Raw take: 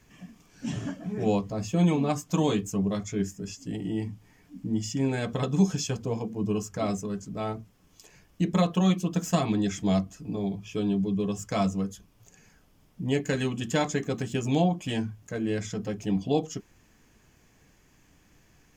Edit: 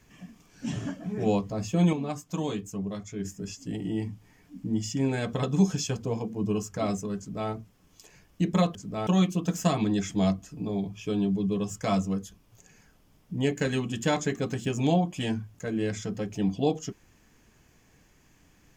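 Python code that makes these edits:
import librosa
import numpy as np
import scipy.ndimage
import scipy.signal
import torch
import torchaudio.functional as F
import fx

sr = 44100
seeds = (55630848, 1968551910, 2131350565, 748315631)

y = fx.edit(x, sr, fx.clip_gain(start_s=1.93, length_s=1.32, db=-6.0),
    fx.duplicate(start_s=7.18, length_s=0.32, to_s=8.75), tone=tone)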